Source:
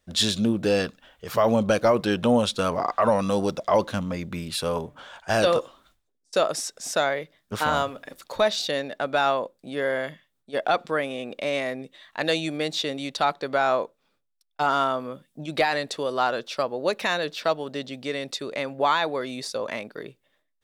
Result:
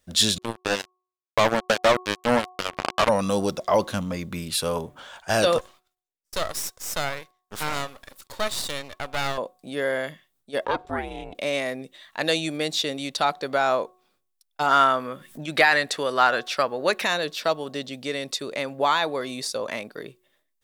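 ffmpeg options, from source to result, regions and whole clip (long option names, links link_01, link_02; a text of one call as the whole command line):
ffmpeg -i in.wav -filter_complex "[0:a]asettb=1/sr,asplit=3[link_01][link_02][link_03];[link_01]atrim=end=0.384[link_04];[link_02]atrim=start=0.38:end=3.09,asetpts=PTS-STARTPTS,afade=type=in:duration=0.004:curve=qsin,afade=type=out:start_time=2.706:duration=0.004:curve=qsin,acrossover=split=3800[link_05][link_06];[link_06]acompressor=threshold=-51dB:ratio=4:attack=1:release=60[link_07];[link_05][link_07]amix=inputs=2:normalize=0,highpass=220,acrusher=bits=2:mix=0:aa=0.5[link_08];[link_03]atrim=start=3.086[link_09];[link_04][link_08]acrossfade=duration=0.004:curve1=hsin:curve2=qsin[link_10];[link_10][link_09]acrossfade=duration=0.004:curve1=qsin:curve2=hsin,asettb=1/sr,asplit=3[link_11][link_12][link_13];[link_11]atrim=end=5.584[link_14];[link_12]atrim=start=5.58:end=9.38,asetpts=PTS-STARTPTS,afade=type=in:duration=0.004:curve=qsin,afade=type=out:start_time=3.796:duration=0.004:curve=qsin,agate=range=-14dB:threshold=-57dB:ratio=16:release=100:detection=peak,lowshelf=frequency=420:gain=-10.5,aeval=exprs='max(val(0),0)':channel_layout=same[link_15];[link_13]atrim=start=9.376[link_16];[link_14][link_15]acrossfade=duration=0.004:curve1=hsin:curve2=qsin[link_17];[link_17][link_16]acrossfade=duration=0.004:curve1=qsin:curve2=hsin,asettb=1/sr,asplit=3[link_18][link_19][link_20];[link_18]atrim=end=10.654[link_21];[link_19]atrim=start=10.65:end=11.35,asetpts=PTS-STARTPTS,afade=type=in:duration=0.004:curve=qsin,afade=type=out:start_time=0.696:duration=0.004:curve=qsin,highshelf=frequency=3400:gain=-10,aeval=exprs='val(0)*sin(2*PI*210*n/s)':channel_layout=same[link_22];[link_20]atrim=start=11.346[link_23];[link_21][link_22]acrossfade=duration=0.004:curve1=hsin:curve2=qsin[link_24];[link_24][link_23]acrossfade=duration=0.004:curve1=qsin:curve2=hsin,asettb=1/sr,asplit=3[link_25][link_26][link_27];[link_25]atrim=end=14.714[link_28];[link_26]atrim=start=14.71:end=17.04,asetpts=PTS-STARTPTS,afade=type=in:duration=0.004:curve=qsin,afade=type=out:start_time=2.326:duration=0.004:curve=qsin,equalizer=frequency=1700:width_type=o:width=1.3:gain=9,acompressor=mode=upward:threshold=-33dB:ratio=2.5:attack=3.2:release=140:knee=2.83:detection=peak[link_29];[link_27]atrim=start=17.036[link_30];[link_28][link_29]acrossfade=duration=0.004:curve1=hsin:curve2=qsin[link_31];[link_31][link_30]acrossfade=duration=0.004:curve1=qsin:curve2=hsin,highshelf=frequency=6000:gain=9,bandreject=frequency=366.7:width_type=h:width=4,bandreject=frequency=733.4:width_type=h:width=4,bandreject=frequency=1100.1:width_type=h:width=4" out.wav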